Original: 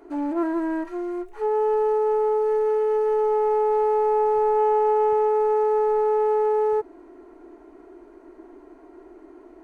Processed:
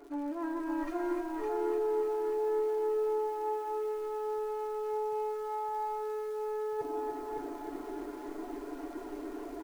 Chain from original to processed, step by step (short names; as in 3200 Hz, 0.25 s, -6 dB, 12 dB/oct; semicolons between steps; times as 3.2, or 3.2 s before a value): reverb removal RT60 0.71 s; comb 7 ms, depth 59%; reverse; compressor 10:1, threshold -38 dBFS, peak gain reduction 22 dB; reverse; crackle 340/s -56 dBFS; on a send: echo 0.561 s -4 dB; on the sum: spring tank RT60 1 s, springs 37/57 ms, chirp 40 ms, DRR 10 dB; lo-fi delay 0.295 s, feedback 80%, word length 10-bit, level -9 dB; gain +4.5 dB